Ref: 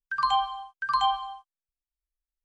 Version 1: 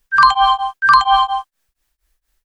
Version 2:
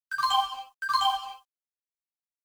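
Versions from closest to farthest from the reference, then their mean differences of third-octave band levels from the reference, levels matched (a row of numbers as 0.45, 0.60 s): 1, 2; 3.5, 6.0 dB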